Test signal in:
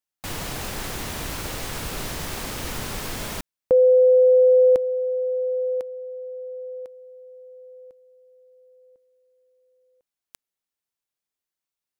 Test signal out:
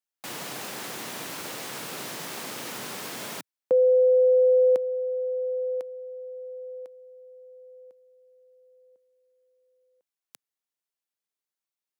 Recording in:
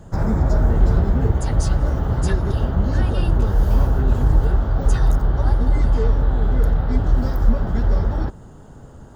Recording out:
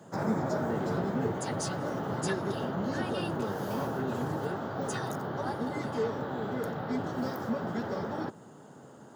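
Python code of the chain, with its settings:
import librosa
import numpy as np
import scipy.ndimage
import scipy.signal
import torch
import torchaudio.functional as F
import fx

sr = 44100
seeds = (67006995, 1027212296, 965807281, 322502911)

y = scipy.signal.sosfilt(scipy.signal.bessel(8, 220.0, 'highpass', norm='mag', fs=sr, output='sos'), x)
y = y * 10.0 ** (-3.5 / 20.0)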